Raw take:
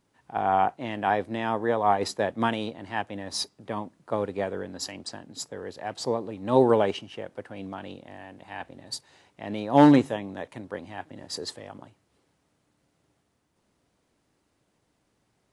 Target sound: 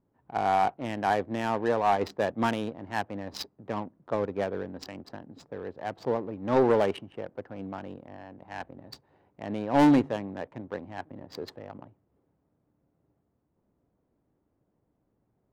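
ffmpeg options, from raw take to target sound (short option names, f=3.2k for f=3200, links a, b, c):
-af "adynamicsmooth=sensitivity=4:basefreq=860,asoftclip=type=tanh:threshold=-14dB"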